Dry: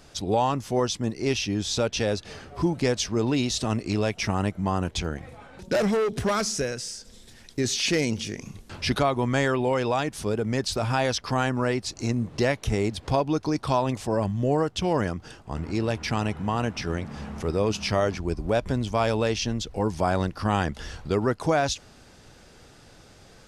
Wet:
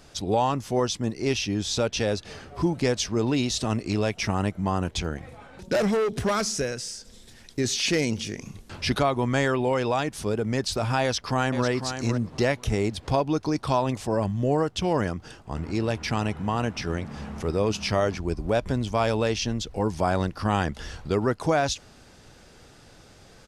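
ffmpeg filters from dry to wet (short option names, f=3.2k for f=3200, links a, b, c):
-filter_complex "[0:a]asplit=2[a][b];[b]afade=t=in:st=11.02:d=0.01,afade=t=out:st=11.67:d=0.01,aecho=0:1:500|1000:0.375837|0.0563756[c];[a][c]amix=inputs=2:normalize=0"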